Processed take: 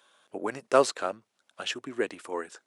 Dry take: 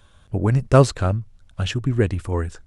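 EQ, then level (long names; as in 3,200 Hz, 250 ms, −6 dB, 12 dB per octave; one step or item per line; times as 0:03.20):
Bessel high-pass filter 460 Hz, order 4
−3.0 dB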